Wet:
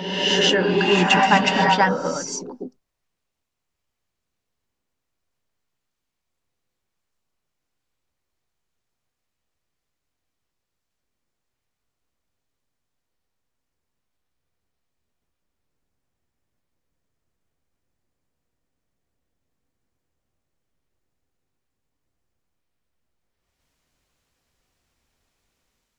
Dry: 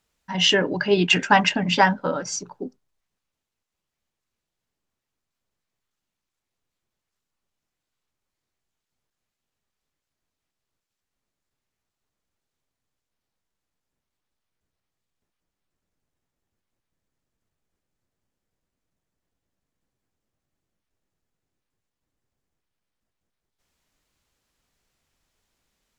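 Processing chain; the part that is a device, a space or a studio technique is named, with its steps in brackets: reverse reverb (reverse; reverb RT60 1.6 s, pre-delay 0.104 s, DRR -0.5 dB; reverse); gain -1 dB

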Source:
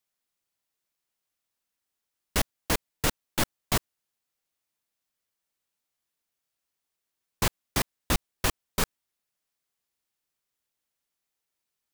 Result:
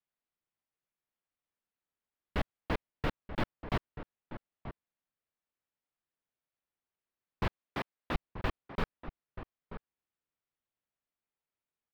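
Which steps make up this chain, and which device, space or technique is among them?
7.47–8.15 HPF 270 Hz 6 dB/oct; shout across a valley (air absorption 390 m; outdoor echo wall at 160 m, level -11 dB); gain -4 dB

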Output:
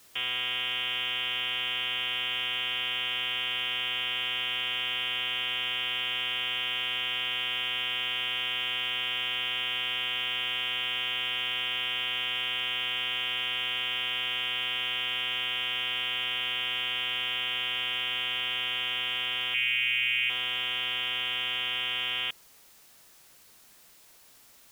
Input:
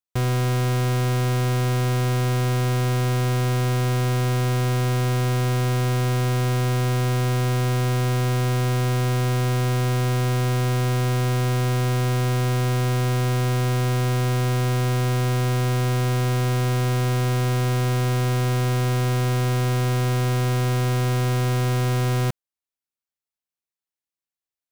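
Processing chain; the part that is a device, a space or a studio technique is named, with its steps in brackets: scrambled radio voice (BPF 360–2900 Hz; inverted band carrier 3500 Hz; white noise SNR 25 dB); 19.54–20.3 EQ curve 150 Hz 0 dB, 520 Hz -16 dB, 1000 Hz -17 dB, 2400 Hz +11 dB, 4000 Hz -11 dB, 7300 Hz 0 dB; gain -1.5 dB

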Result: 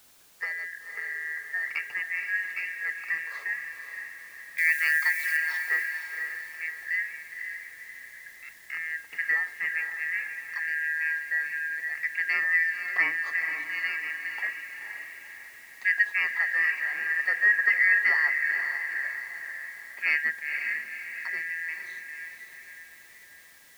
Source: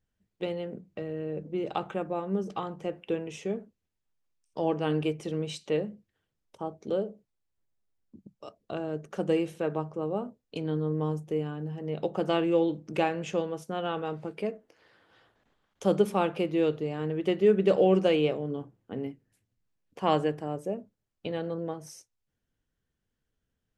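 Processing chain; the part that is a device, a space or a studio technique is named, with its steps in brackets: split-band scrambled radio (four-band scrambler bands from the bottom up 2143; BPF 370–3200 Hz; white noise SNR 26 dB); 4.58–5.37 tilt +4.5 dB/oct; diffused feedback echo 0.509 s, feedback 49%, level -6.5 dB

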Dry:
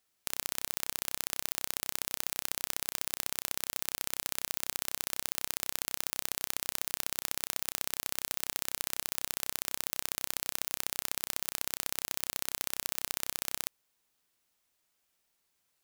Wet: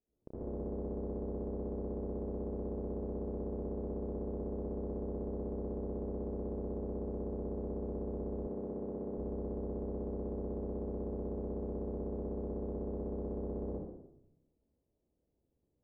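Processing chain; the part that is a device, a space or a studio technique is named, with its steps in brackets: next room (LPF 490 Hz 24 dB/oct; reverb RT60 0.90 s, pre-delay 71 ms, DRR -9 dB); 8.47–9.18 HPF 110 Hz 12 dB/oct; dynamic EQ 470 Hz, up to +3 dB, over -59 dBFS, Q 0.86; gain +2 dB

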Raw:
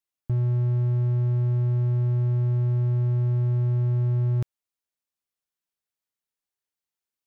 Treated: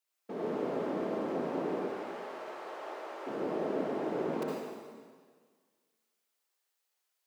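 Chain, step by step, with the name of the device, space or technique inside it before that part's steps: 1.75–3.27 HPF 770 Hz 12 dB/oct; whispering ghost (whisperiser; HPF 400 Hz 24 dB/oct; reverb RT60 1.7 s, pre-delay 56 ms, DRR -4.5 dB); gain +3 dB

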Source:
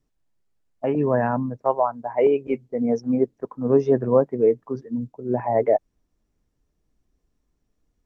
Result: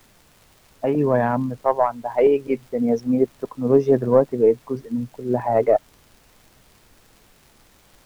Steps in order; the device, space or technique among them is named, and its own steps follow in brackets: record under a worn stylus (tracing distortion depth 0.036 ms; crackle; pink noise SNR 33 dB); gain +2 dB

